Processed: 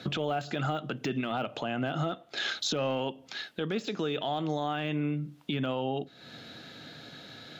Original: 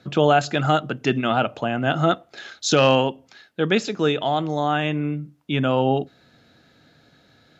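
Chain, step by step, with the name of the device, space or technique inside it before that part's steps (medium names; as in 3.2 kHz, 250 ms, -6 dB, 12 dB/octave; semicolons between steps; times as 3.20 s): broadcast voice chain (high-pass 110 Hz; de-esser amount 95%; compression 5:1, threshold -36 dBFS, peak gain reduction 19.5 dB; peaking EQ 3.4 kHz +6 dB 0.9 oct; peak limiter -29 dBFS, peak gain reduction 8.5 dB); trim +7.5 dB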